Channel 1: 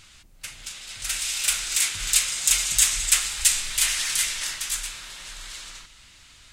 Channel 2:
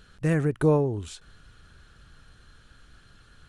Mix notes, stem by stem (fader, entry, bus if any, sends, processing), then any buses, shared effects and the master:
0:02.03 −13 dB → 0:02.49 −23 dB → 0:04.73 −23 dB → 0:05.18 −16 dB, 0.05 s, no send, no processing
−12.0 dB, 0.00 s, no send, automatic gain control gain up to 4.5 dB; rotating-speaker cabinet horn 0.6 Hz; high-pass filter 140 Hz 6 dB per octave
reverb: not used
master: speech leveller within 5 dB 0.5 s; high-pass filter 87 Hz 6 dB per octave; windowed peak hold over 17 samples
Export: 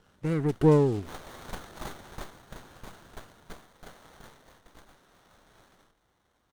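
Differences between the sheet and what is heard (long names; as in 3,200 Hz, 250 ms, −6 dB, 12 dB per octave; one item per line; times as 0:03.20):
stem 2 −12.0 dB → −0.5 dB
master: missing speech leveller within 5 dB 0.5 s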